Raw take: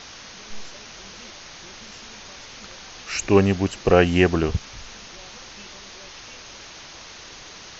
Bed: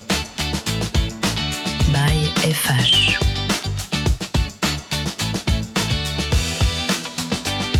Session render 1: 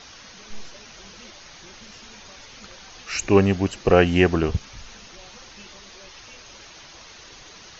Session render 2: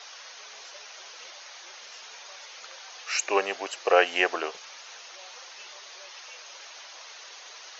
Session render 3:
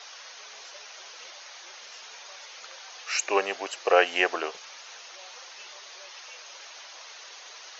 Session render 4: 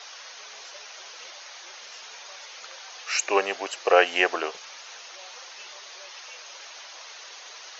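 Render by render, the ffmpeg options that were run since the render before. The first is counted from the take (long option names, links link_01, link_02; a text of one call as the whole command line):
ffmpeg -i in.wav -af "afftdn=noise_reduction=6:noise_floor=-42" out.wav
ffmpeg -i in.wav -af "highpass=frequency=530:width=0.5412,highpass=frequency=530:width=1.3066" out.wav
ffmpeg -i in.wav -af anull out.wav
ffmpeg -i in.wav -af "volume=2dB" out.wav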